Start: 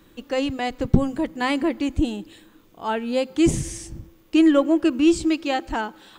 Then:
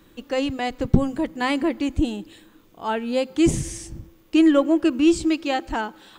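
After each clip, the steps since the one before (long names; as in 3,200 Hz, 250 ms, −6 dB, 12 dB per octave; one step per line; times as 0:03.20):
no processing that can be heard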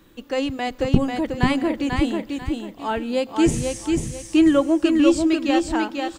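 repeating echo 492 ms, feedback 29%, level −4 dB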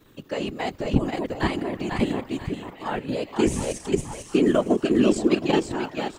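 output level in coarse steps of 9 dB
echo through a band-pass that steps 718 ms, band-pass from 1,000 Hz, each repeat 0.7 octaves, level −9 dB
random phases in short frames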